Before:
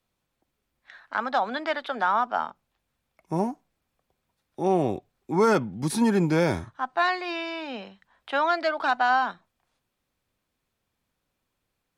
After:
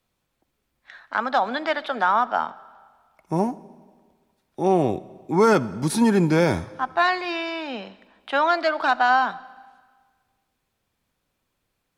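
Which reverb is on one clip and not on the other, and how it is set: algorithmic reverb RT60 1.6 s, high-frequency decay 0.95×, pre-delay 25 ms, DRR 19 dB; trim +3.5 dB

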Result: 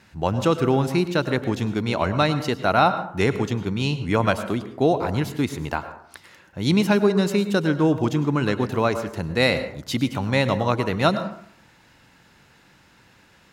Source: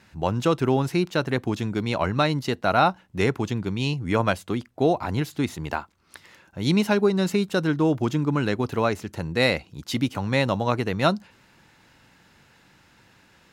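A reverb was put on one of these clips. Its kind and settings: plate-style reverb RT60 0.63 s, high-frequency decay 0.45×, pre-delay 90 ms, DRR 10.5 dB; trim +1.5 dB

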